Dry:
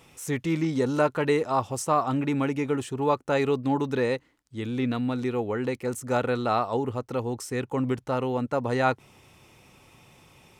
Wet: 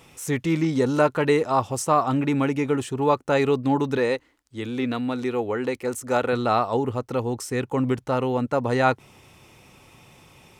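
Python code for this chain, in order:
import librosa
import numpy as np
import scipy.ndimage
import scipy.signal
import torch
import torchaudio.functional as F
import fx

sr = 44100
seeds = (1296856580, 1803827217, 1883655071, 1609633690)

y = fx.peak_eq(x, sr, hz=150.0, db=-11.5, octaves=0.76, at=(3.97, 6.33))
y = F.gain(torch.from_numpy(y), 3.5).numpy()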